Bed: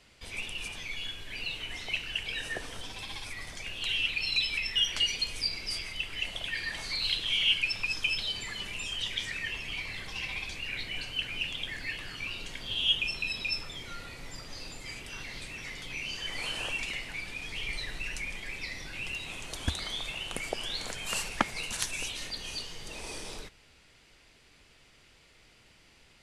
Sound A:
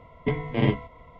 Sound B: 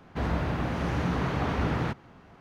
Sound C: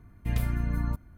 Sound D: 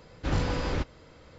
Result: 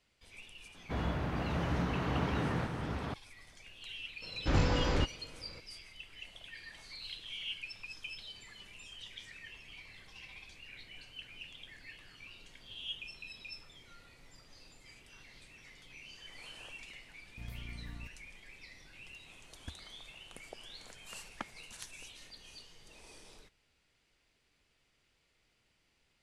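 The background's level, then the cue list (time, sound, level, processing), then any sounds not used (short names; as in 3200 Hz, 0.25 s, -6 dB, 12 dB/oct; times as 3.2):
bed -15 dB
0.74 add B -6.5 dB + reverse delay 0.637 s, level -4 dB
4.22 add D -1 dB
17.12 add C -18 dB
not used: A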